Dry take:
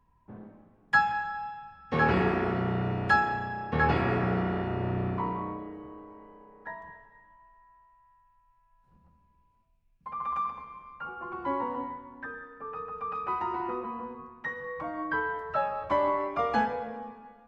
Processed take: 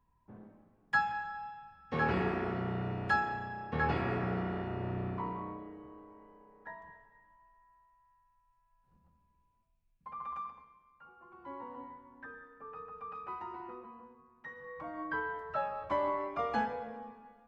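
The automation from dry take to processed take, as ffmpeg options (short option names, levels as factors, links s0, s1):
-af "volume=5.31,afade=t=out:st=10.08:d=0.7:silence=0.266073,afade=t=in:st=11.31:d=0.97:silence=0.334965,afade=t=out:st=12.83:d=1.41:silence=0.354813,afade=t=in:st=14.24:d=0.77:silence=0.266073"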